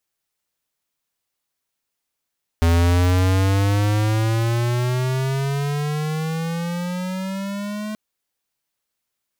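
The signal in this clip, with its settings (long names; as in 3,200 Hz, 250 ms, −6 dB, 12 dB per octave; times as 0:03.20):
pitch glide with a swell square, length 5.33 s, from 83 Hz, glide +16.5 semitones, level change −13 dB, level −15 dB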